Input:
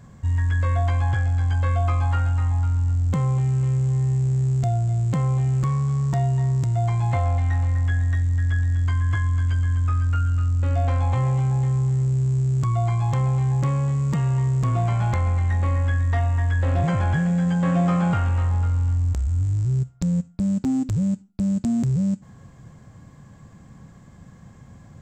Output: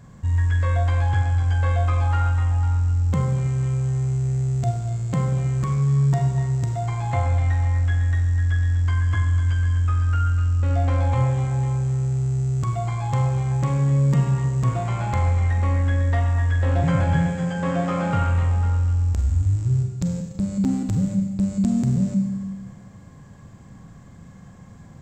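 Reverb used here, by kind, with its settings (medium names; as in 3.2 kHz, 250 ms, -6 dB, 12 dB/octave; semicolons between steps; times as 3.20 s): Schroeder reverb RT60 1.5 s, combs from 32 ms, DRR 3 dB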